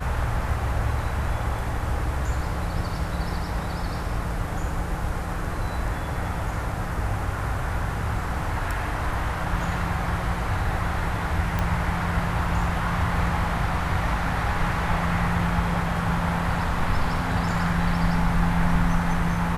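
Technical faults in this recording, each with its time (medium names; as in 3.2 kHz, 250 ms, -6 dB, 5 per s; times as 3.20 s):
11.59 s: pop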